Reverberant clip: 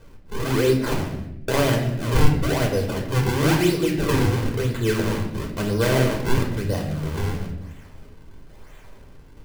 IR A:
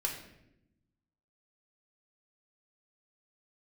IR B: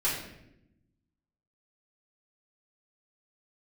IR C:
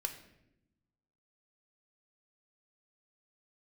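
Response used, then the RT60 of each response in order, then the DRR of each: A; 0.85, 0.85, 0.85 seconds; −0.5, −9.0, 5.0 decibels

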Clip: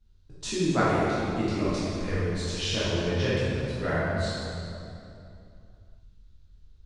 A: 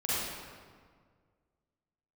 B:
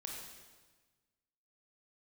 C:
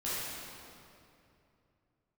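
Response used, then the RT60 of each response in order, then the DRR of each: C; 1.8, 1.3, 2.7 seconds; −10.0, −1.5, −11.0 decibels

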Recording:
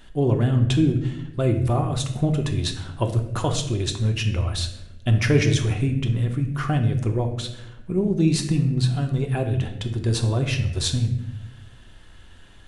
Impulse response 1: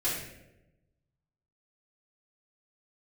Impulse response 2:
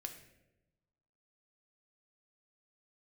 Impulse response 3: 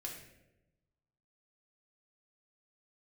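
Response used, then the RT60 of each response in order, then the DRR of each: 2; 0.95, 1.0, 0.95 seconds; −11.5, 4.5, −1.5 decibels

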